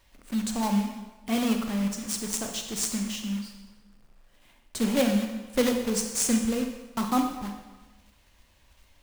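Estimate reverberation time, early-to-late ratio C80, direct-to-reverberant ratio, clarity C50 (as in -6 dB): 1.2 s, 8.0 dB, 4.0 dB, 5.5 dB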